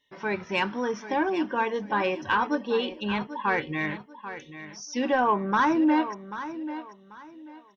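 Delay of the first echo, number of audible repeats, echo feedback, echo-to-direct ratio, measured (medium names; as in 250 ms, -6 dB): 789 ms, 2, 27%, -12.0 dB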